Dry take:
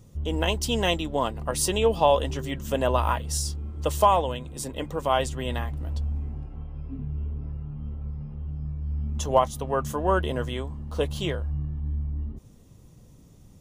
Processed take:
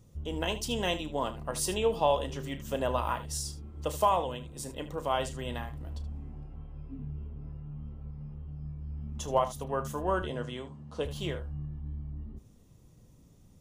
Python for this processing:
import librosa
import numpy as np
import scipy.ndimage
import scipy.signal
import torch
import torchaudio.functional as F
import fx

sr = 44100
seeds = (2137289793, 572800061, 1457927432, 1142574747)

p1 = fx.cheby1_bandpass(x, sr, low_hz=120.0, high_hz=7600.0, order=2, at=(10.22, 11.05))
p2 = p1 + fx.room_early_taps(p1, sr, ms=(33, 76), db=(-12.5, -14.0), dry=0)
y = F.gain(torch.from_numpy(p2), -6.5).numpy()